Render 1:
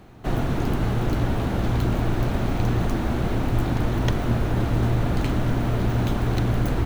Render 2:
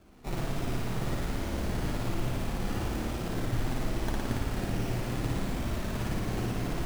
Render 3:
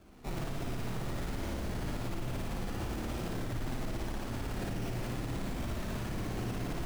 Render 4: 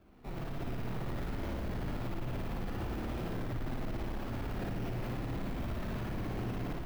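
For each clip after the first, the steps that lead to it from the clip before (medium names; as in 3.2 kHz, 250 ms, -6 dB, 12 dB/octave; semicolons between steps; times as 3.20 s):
decimation with a swept rate 22×, swing 60% 1.2 Hz; flange 0.7 Hz, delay 2.9 ms, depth 5.7 ms, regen -46%; on a send: flutter echo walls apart 9.7 m, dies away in 1.3 s; on the sum: trim -7.5 dB
peak limiter -28 dBFS, peak gain reduction 10.5 dB
peaking EQ 7.9 kHz -11.5 dB 1.6 oct; level rider gain up to 5 dB; in parallel at -11 dB: wavefolder -32 dBFS; on the sum: trim -6 dB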